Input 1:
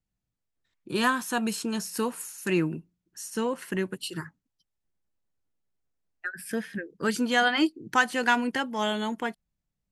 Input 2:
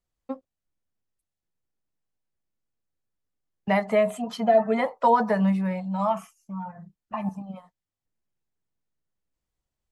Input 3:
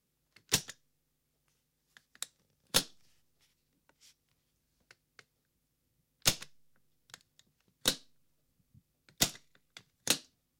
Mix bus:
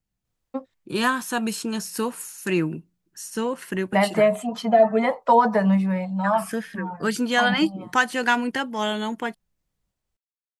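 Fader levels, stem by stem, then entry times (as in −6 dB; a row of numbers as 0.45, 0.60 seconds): +2.5 dB, +3.0 dB, muted; 0.00 s, 0.25 s, muted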